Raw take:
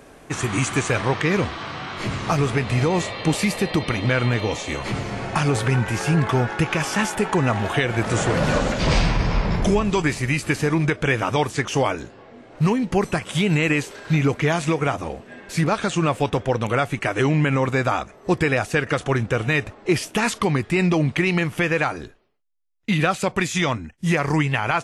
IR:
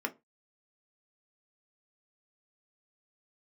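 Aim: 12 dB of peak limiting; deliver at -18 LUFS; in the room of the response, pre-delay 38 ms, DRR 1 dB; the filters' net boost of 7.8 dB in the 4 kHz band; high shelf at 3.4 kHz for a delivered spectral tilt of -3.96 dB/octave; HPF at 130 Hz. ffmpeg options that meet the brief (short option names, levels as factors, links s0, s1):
-filter_complex "[0:a]highpass=130,highshelf=f=3400:g=6,equalizer=f=4000:t=o:g=6,alimiter=limit=0.168:level=0:latency=1,asplit=2[s0][s1];[1:a]atrim=start_sample=2205,adelay=38[s2];[s1][s2]afir=irnorm=-1:irlink=0,volume=0.531[s3];[s0][s3]amix=inputs=2:normalize=0,volume=1.88"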